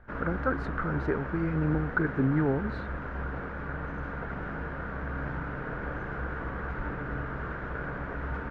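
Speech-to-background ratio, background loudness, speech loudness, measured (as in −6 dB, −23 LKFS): 6.0 dB, −36.0 LKFS, −30.0 LKFS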